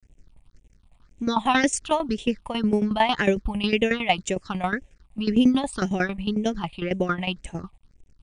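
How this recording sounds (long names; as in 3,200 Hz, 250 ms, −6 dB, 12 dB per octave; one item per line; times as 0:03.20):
a quantiser's noise floor 10 bits, dither none
phaser sweep stages 6, 1.9 Hz, lowest notch 380–1,300 Hz
tremolo saw down 11 Hz, depth 80%
MP3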